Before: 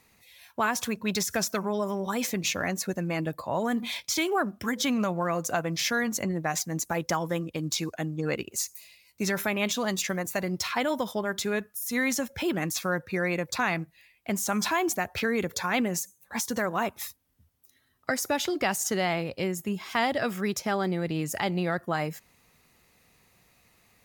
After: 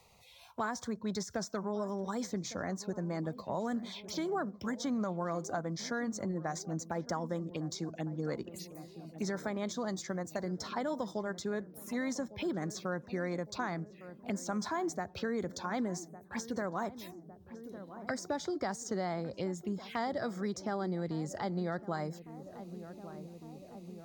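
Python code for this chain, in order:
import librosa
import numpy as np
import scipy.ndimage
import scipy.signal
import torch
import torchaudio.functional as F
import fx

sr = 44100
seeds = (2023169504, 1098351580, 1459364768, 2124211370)

y = fx.peak_eq(x, sr, hz=13000.0, db=-13.5, octaves=1.1)
y = fx.env_phaser(y, sr, low_hz=270.0, high_hz=2700.0, full_db=-28.5)
y = fx.echo_filtered(y, sr, ms=1156, feedback_pct=70, hz=860.0, wet_db=-16.0)
y = fx.band_squash(y, sr, depth_pct=40)
y = F.gain(torch.from_numpy(y), -6.5).numpy()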